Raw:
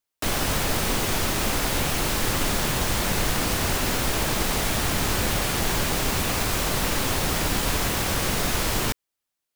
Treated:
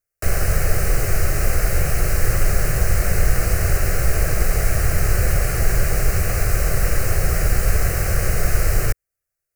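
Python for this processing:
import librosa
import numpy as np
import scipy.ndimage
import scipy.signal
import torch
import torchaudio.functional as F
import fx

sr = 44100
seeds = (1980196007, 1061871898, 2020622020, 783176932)

y = fx.low_shelf(x, sr, hz=180.0, db=11.5)
y = fx.fixed_phaser(y, sr, hz=940.0, stages=6)
y = y * 10.0 ** (2.0 / 20.0)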